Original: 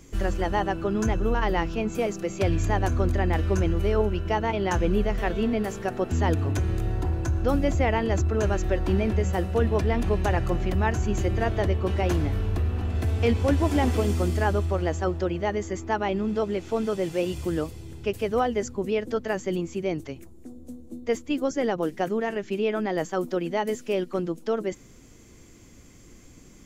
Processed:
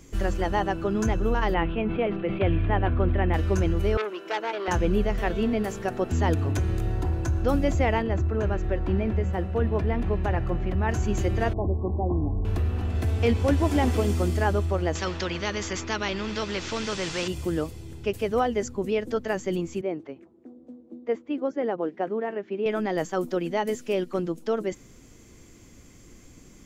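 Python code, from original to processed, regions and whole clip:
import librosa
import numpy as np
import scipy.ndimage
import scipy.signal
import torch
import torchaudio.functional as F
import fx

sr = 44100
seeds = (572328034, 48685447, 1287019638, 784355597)

y = fx.chain(x, sr, fx.steep_lowpass(hz=3400.0, slope=48),
    fx.sustainer(db_per_s=55.0), at=(1.54, 3.34))
y = fx.chain(y, sr, fx.highpass(hz=330.0, slope=24),
    fx.transformer_sat(knee_hz=1900.0), at=(3.97, 4.68))
y = fx.chain(y, sr, fx.bass_treble(bass_db=2, treble_db=-14),
    fx.comb_fb(f0_hz=55.0, decay_s=1.8, harmonics='all', damping=0.0, mix_pct=30), at=(8.02, 10.89))
y = fx.chain(y, sr, fx.cheby_ripple(hz=1100.0, ripple_db=6),
    fx.low_shelf(hz=74.0, db=8.5), at=(11.53, 12.45))
y = fx.chain(y, sr, fx.lowpass(hz=6100.0, slope=24),
    fx.peak_eq(hz=740.0, db=-11.5, octaves=0.4),
    fx.spectral_comp(ratio=2.0), at=(14.95, 17.28))
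y = fx.chain(y, sr, fx.bandpass_edges(low_hz=260.0, high_hz=3300.0),
    fx.high_shelf(hz=2000.0, db=-11.5), at=(19.81, 22.66))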